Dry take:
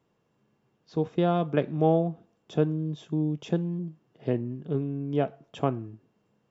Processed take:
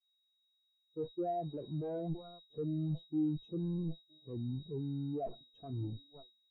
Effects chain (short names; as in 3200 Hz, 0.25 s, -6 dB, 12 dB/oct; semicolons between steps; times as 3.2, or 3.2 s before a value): dynamic EQ 180 Hz, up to -8 dB, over -44 dBFS, Q 5; thinning echo 0.967 s, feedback 41%, high-pass 230 Hz, level -21 dB; in parallel at +2 dB: limiter -19 dBFS, peak gain reduction 8.5 dB; on the sum: soft clip -19 dBFS, distortion -10 dB; added harmonics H 7 -23 dB, 8 -16 dB, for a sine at -19 dBFS; reverse; compressor 16:1, threshold -36 dBFS, peak gain reduction 15.5 dB; reverse; whine 3800 Hz -51 dBFS; sample leveller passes 3; expander -36 dBFS; spectral expander 2.5:1